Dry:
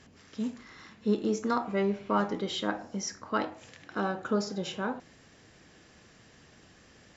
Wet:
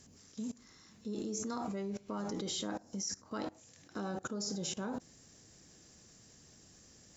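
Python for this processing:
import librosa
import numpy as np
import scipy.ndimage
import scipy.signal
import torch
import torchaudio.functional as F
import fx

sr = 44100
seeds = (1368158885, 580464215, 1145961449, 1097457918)

y = fx.curve_eq(x, sr, hz=(190.0, 1700.0, 3000.0, 6500.0), db=(0, -8, -6, 10))
y = fx.level_steps(y, sr, step_db=22)
y = y * librosa.db_to_amplitude(6.0)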